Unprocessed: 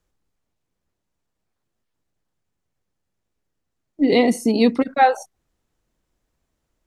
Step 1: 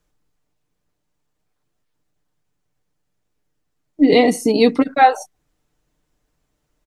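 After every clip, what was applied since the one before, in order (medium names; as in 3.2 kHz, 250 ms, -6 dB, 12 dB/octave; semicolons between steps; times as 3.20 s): comb 6.7 ms, depth 44%; trim +3 dB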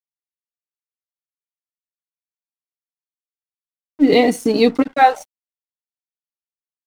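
crossover distortion -37 dBFS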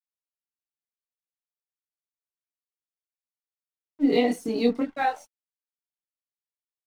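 chorus voices 4, 0.87 Hz, delay 23 ms, depth 2.3 ms; trim -8.5 dB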